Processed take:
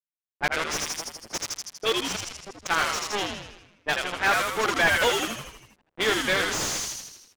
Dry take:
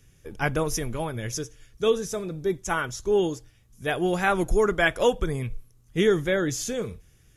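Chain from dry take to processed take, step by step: frequency weighting ITU-R 468; bit crusher 4-bit; bass shelf 200 Hz -5.5 dB; reverse; upward compressor, threshold -25 dBFS; reverse; level-controlled noise filter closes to 390 Hz, open at -17.5 dBFS; on a send: frequency-shifting echo 80 ms, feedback 58%, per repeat -87 Hz, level -5.5 dB; on the sum: slew-rate limiter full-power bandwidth 190 Hz; trim +1.5 dB

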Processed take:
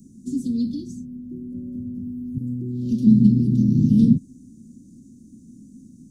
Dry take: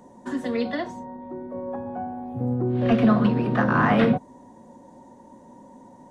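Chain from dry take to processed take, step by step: inverse Chebyshev band-stop 660–2200 Hz, stop band 60 dB; 2.38–3.07 s: bass shelf 290 Hz -12 dB; trim +7 dB

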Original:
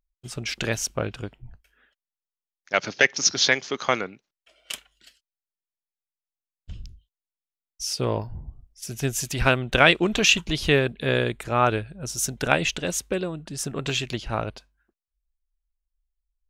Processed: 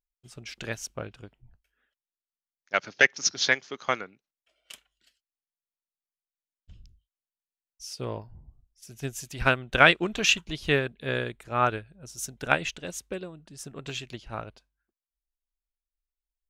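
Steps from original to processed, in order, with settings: dynamic bell 1.5 kHz, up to +4 dB, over -32 dBFS, Q 1.6; upward expansion 1.5:1, over -32 dBFS; trim -2 dB

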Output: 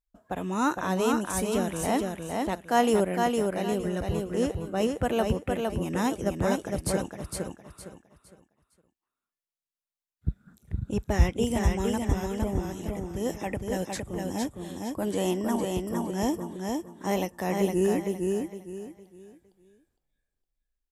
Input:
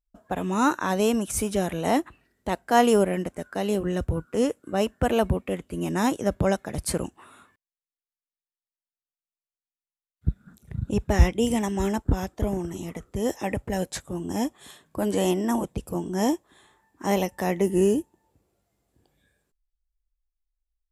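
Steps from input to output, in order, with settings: feedback delay 460 ms, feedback 29%, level -3.5 dB; trim -4 dB

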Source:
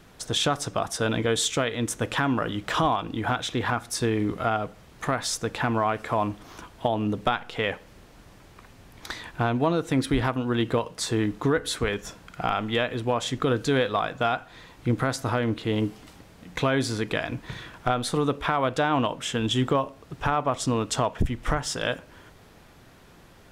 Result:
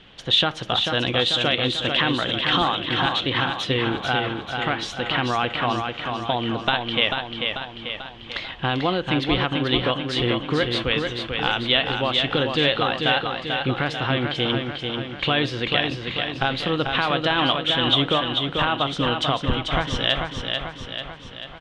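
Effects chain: resonant low-pass 2.9 kHz, resonance Q 6.5; feedback delay 480 ms, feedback 55%, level -5 dB; speed mistake 44.1 kHz file played as 48 kHz

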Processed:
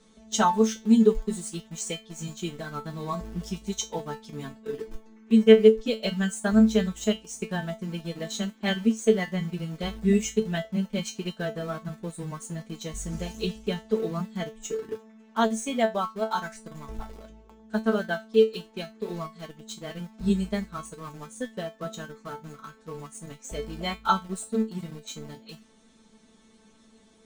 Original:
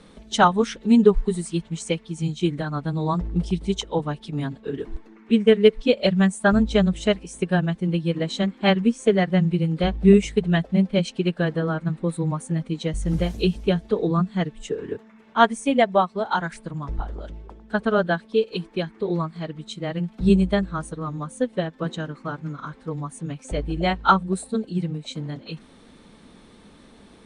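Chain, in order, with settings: peaking EQ 6.7 kHz +13.5 dB 0.64 oct; in parallel at -5 dB: small samples zeroed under -27.5 dBFS; on the sum: feedback comb 220 Hz, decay 0.21 s, harmonics all, mix 90%

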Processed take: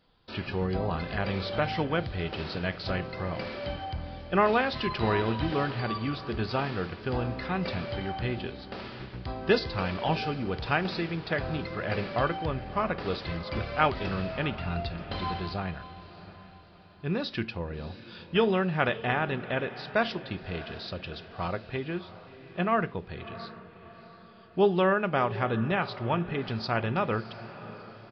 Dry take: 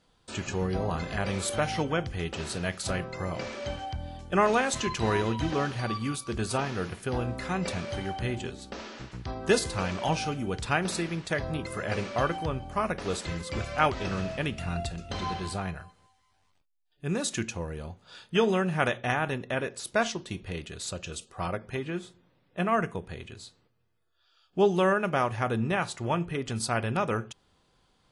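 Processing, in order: on a send: echo that smears into a reverb 668 ms, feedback 46%, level -15 dB; on the sum: resampled via 11.025 kHz

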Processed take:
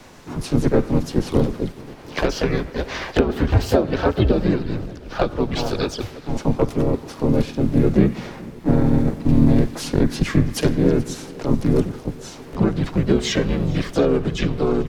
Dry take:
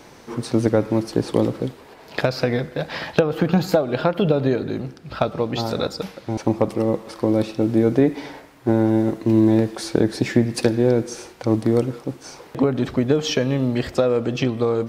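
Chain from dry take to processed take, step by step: frequency shift -96 Hz; shuffle delay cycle 716 ms, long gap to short 1.5:1, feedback 49%, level -22 dB; harmony voices -7 st -3 dB, +3 st -2 dB, +5 st -10 dB; trim -2.5 dB

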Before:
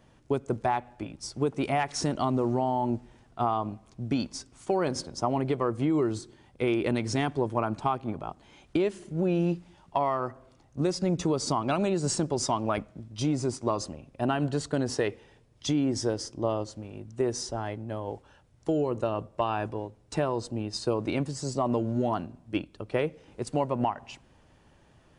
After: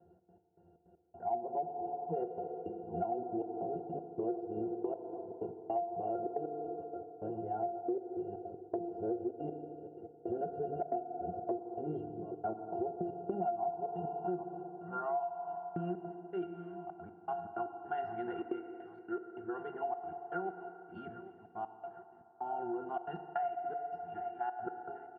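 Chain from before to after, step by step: reverse the whole clip; low-pass 3.2 kHz; tilt shelf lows +5.5 dB, about 1.4 kHz; pitch-class resonator F, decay 0.16 s; de-hum 68.78 Hz, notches 34; on a send: feedback delay 805 ms, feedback 50%, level -15.5 dB; on the sum: dynamic bell 760 Hz, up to +6 dB, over -52 dBFS, Q 2.9; trance gate "xx.x..xx.x..xxxx" 158 bpm -60 dB; band-pass sweep 550 Hz -> 1.6 kHz, 13.05–15.79 s; FDN reverb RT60 2.8 s, low-frequency decay 0.75×, high-frequency decay 0.55×, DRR 9 dB; compression 6:1, threshold -48 dBFS, peak gain reduction 17 dB; trim +15 dB

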